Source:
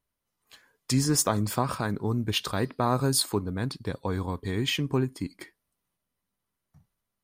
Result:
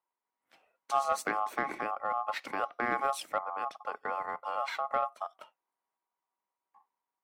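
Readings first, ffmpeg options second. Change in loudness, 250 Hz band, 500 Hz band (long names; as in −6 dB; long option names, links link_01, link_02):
−6.0 dB, −17.5 dB, −5.5 dB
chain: -filter_complex "[0:a]aeval=exprs='val(0)*sin(2*PI*960*n/s)':channel_layout=same,acrossover=split=200 2400:gain=0.0708 1 0.224[link_01][link_02][link_03];[link_01][link_02][link_03]amix=inputs=3:normalize=0,aeval=exprs='0.178*(cos(1*acos(clip(val(0)/0.178,-1,1)))-cos(1*PI/2))+0.00112*(cos(2*acos(clip(val(0)/0.178,-1,1)))-cos(2*PI/2))+0.0178*(cos(3*acos(clip(val(0)/0.178,-1,1)))-cos(3*PI/2))+0.00251*(cos(5*acos(clip(val(0)/0.178,-1,1)))-cos(5*PI/2))':channel_layout=same"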